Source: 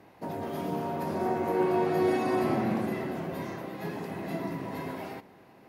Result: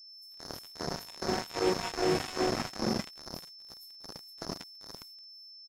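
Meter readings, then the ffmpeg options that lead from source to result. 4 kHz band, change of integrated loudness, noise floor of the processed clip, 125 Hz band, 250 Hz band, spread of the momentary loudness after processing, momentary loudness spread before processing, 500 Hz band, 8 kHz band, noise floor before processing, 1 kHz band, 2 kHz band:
+11.0 dB, -3.0 dB, -51 dBFS, -6.0 dB, -6.0 dB, 17 LU, 12 LU, -5.0 dB, no reading, -55 dBFS, -6.0 dB, -1.5 dB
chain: -filter_complex "[0:a]acrossover=split=800[s0][s1];[s0]aeval=exprs='val(0)*(1-1/2+1/2*cos(2*PI*2.5*n/s))':c=same[s2];[s1]aeval=exprs='val(0)*(1-1/2-1/2*cos(2*PI*2.5*n/s))':c=same[s3];[s2][s3]amix=inputs=2:normalize=0,aeval=exprs='val(0)+0.00891*sin(2*PI*5300*n/s)':c=same,acrossover=split=260|3100[s4][s5][s6];[s5]adelay=70[s7];[s4]adelay=150[s8];[s8][s7][s6]amix=inputs=3:normalize=0,acrossover=split=6100[s9][s10];[s9]acrusher=bits=4:mix=0:aa=0.5[s11];[s11][s10]amix=inputs=2:normalize=0,volume=1.26"

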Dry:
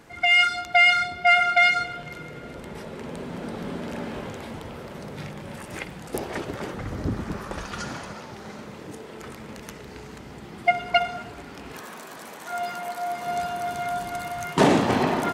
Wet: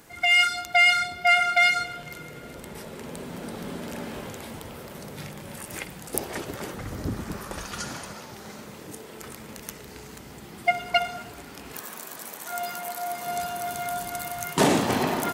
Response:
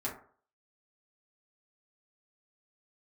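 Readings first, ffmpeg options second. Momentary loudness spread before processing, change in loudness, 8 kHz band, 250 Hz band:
22 LU, -1.5 dB, +6.0 dB, -3.0 dB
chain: -af "aemphasis=mode=production:type=50fm,volume=0.75"

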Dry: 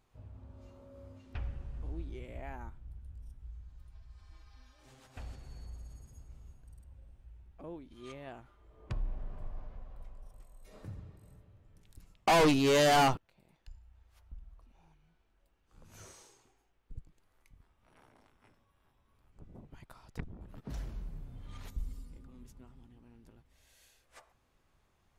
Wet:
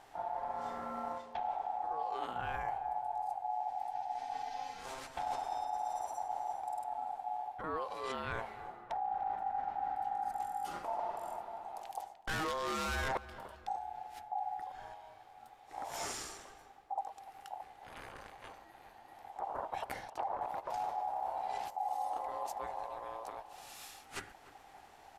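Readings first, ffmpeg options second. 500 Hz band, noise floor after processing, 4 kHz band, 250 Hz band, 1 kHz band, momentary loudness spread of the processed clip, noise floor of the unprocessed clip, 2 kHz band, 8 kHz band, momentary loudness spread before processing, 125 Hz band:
-6.5 dB, -58 dBFS, -7.5 dB, -12.5 dB, +3.5 dB, 14 LU, -73 dBFS, -3.0 dB, -3.0 dB, 26 LU, -11.0 dB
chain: -filter_complex "[0:a]aeval=exprs='(tanh(28.2*val(0)+0.25)-tanh(0.25))/28.2':c=same,areverse,acompressor=threshold=0.00355:ratio=16,areverse,aeval=exprs='val(0)*sin(2*PI*790*n/s)':c=same,equalizer=f=180:w=1.8:g=-5.5,asplit=2[s0][s1];[s1]adelay=297,lowpass=f=1800:p=1,volume=0.178,asplit=2[s2][s3];[s3]adelay=297,lowpass=f=1800:p=1,volume=0.49,asplit=2[s4][s5];[s5]adelay=297,lowpass=f=1800:p=1,volume=0.49,asplit=2[s6][s7];[s7]adelay=297,lowpass=f=1800:p=1,volume=0.49,asplit=2[s8][s9];[s9]adelay=297,lowpass=f=1800:p=1,volume=0.49[s10];[s0][s2][s4][s6][s8][s10]amix=inputs=6:normalize=0,aresample=32000,aresample=44100,volume=7.5"

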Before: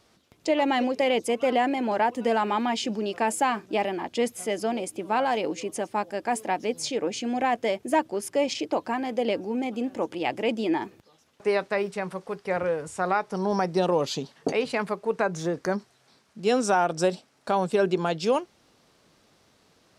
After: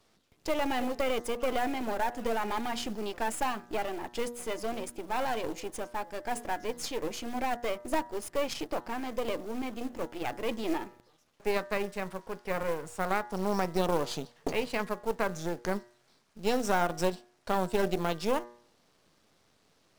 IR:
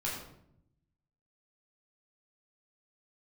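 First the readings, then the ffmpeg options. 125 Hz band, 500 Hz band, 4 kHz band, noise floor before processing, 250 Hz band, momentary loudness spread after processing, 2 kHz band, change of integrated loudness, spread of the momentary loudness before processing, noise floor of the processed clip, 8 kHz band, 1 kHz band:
-4.5 dB, -6.5 dB, -5.5 dB, -63 dBFS, -7.0 dB, 7 LU, -5.0 dB, -6.5 dB, 6 LU, -68 dBFS, -5.0 dB, -6.5 dB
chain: -af "aeval=exprs='if(lt(val(0),0),0.251*val(0),val(0))':c=same,acrusher=bits=5:mode=log:mix=0:aa=0.000001,bandreject=f=119.8:t=h:w=4,bandreject=f=239.6:t=h:w=4,bandreject=f=359.4:t=h:w=4,bandreject=f=479.2:t=h:w=4,bandreject=f=599:t=h:w=4,bandreject=f=718.8:t=h:w=4,bandreject=f=838.6:t=h:w=4,bandreject=f=958.4:t=h:w=4,bandreject=f=1078.2:t=h:w=4,bandreject=f=1198:t=h:w=4,bandreject=f=1317.8:t=h:w=4,bandreject=f=1437.6:t=h:w=4,bandreject=f=1557.4:t=h:w=4,bandreject=f=1677.2:t=h:w=4,bandreject=f=1797:t=h:w=4,bandreject=f=1916.8:t=h:w=4,bandreject=f=2036.6:t=h:w=4,volume=0.75"

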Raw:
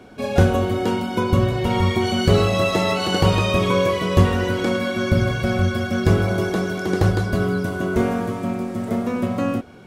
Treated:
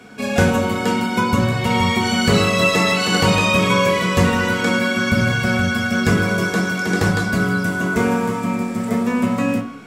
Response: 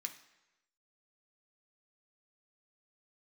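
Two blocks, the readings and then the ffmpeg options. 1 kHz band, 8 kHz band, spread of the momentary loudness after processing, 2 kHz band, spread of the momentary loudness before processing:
+4.0 dB, +8.0 dB, 5 LU, +8.0 dB, 6 LU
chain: -filter_complex "[1:a]atrim=start_sample=2205,asetrate=43659,aresample=44100[s0];[0:a][s0]afir=irnorm=-1:irlink=0,volume=2.66"

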